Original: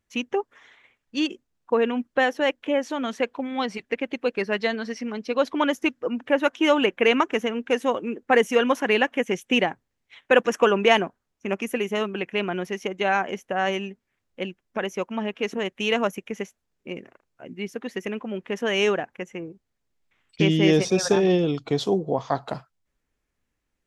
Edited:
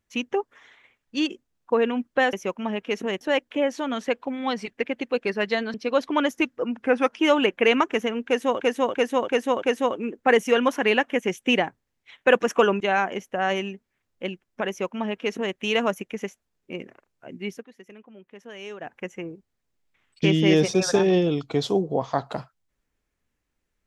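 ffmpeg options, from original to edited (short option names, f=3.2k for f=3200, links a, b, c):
-filter_complex "[0:a]asplit=13[a][b][c][d][e][f][g][h][i][j][k][l][m];[a]atrim=end=2.332[n];[b]atrim=start=14.848:end=15.732[o];[c]atrim=start=2.328:end=4.862[p];[d]atrim=start=5.178:end=6.214[q];[e]atrim=start=6.21:end=6.59,asetpts=PTS-STARTPTS,asetrate=39690,aresample=44100[r];[f]atrim=start=6.586:end=8.002[s];[g]atrim=start=7.658:end=8.002[t];[h]atrim=start=7.658:end=8.002[u];[i]atrim=start=7.658:end=8.002[v];[j]atrim=start=7.658:end=10.842[w];[k]atrim=start=12.968:end=17.82,asetpts=PTS-STARTPTS,afade=t=out:st=4.722:d=0.13:silence=0.149624[x];[l]atrim=start=17.82:end=18.96,asetpts=PTS-STARTPTS,volume=-16.5dB[y];[m]atrim=start=18.96,asetpts=PTS-STARTPTS,afade=t=in:d=0.13:silence=0.149624[z];[n][o]acrossfade=d=0.004:c1=hsin:c2=hsin[aa];[aa][p]acrossfade=d=0.004:c1=hsin:c2=hsin[ab];[ab][q]acrossfade=d=0.004:c1=hsin:c2=hsin[ac];[ac][r]acrossfade=d=0.004:c1=hsin:c2=hsin[ad];[ad][s]acrossfade=d=0.004:c1=hsin:c2=hsin[ae];[ae][t]acrossfade=d=0.004:c1=hsin:c2=hsin[af];[af][u]acrossfade=d=0.004:c1=hsin:c2=hsin[ag];[ag][v]acrossfade=d=0.004:c1=hsin:c2=hsin[ah];[ah][w]acrossfade=d=0.004:c1=hsin:c2=hsin[ai];[x][y][z]concat=n=3:v=0:a=1[aj];[ai][aj]acrossfade=d=0.004:c1=hsin:c2=hsin"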